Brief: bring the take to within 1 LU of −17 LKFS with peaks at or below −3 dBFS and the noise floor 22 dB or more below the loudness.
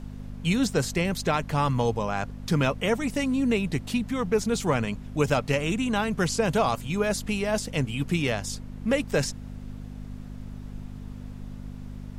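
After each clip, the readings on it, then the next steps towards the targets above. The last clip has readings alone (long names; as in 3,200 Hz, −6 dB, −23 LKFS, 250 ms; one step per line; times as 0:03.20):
mains hum 50 Hz; hum harmonics up to 250 Hz; level of the hum −37 dBFS; background noise floor −40 dBFS; target noise floor −49 dBFS; integrated loudness −26.5 LKFS; sample peak −10.0 dBFS; target loudness −17.0 LKFS
→ hum removal 50 Hz, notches 5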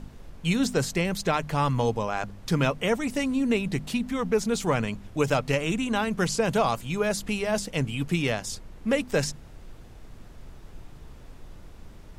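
mains hum none found; background noise floor −47 dBFS; target noise floor −49 dBFS
→ noise reduction from a noise print 6 dB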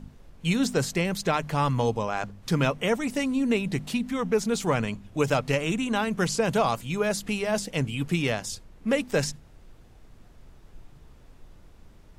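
background noise floor −52 dBFS; integrated loudness −27.0 LKFS; sample peak −10.0 dBFS; target loudness −17.0 LKFS
→ level +10 dB
brickwall limiter −3 dBFS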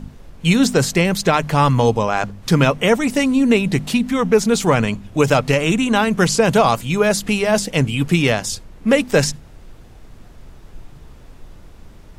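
integrated loudness −17.0 LKFS; sample peak −3.0 dBFS; background noise floor −42 dBFS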